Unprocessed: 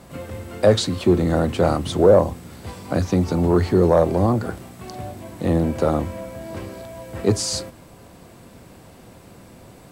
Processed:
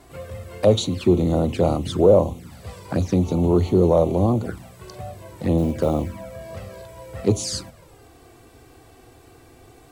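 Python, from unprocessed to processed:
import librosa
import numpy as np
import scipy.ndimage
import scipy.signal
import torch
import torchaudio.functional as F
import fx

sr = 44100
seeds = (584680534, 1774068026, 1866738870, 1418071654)

y = fx.env_flanger(x, sr, rest_ms=3.0, full_db=-17.0)
y = fx.quant_float(y, sr, bits=4, at=(5.58, 6.22))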